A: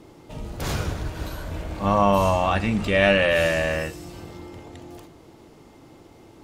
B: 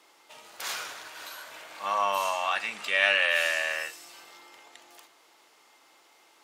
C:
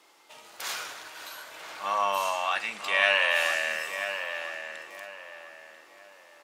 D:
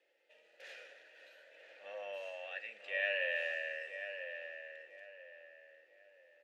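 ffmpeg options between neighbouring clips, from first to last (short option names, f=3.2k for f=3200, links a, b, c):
-af "highpass=1.2k"
-filter_complex "[0:a]asplit=2[a][b];[b]adelay=991,lowpass=f=2.1k:p=1,volume=-7dB,asplit=2[c][d];[d]adelay=991,lowpass=f=2.1k:p=1,volume=0.37,asplit=2[e][f];[f]adelay=991,lowpass=f=2.1k:p=1,volume=0.37,asplit=2[g][h];[h]adelay=991,lowpass=f=2.1k:p=1,volume=0.37[i];[a][c][e][g][i]amix=inputs=5:normalize=0"
-filter_complex "[0:a]asplit=3[a][b][c];[a]bandpass=f=530:t=q:w=8,volume=0dB[d];[b]bandpass=f=1.84k:t=q:w=8,volume=-6dB[e];[c]bandpass=f=2.48k:t=q:w=8,volume=-9dB[f];[d][e][f]amix=inputs=3:normalize=0,volume=-3dB"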